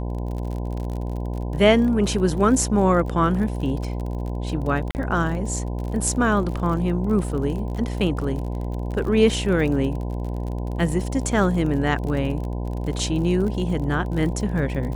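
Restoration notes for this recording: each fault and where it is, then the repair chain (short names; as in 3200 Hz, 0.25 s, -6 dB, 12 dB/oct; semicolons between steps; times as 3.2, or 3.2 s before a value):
buzz 60 Hz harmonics 17 -27 dBFS
crackle 47/s -30 dBFS
4.91–4.95 gap 39 ms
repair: de-click; de-hum 60 Hz, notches 17; interpolate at 4.91, 39 ms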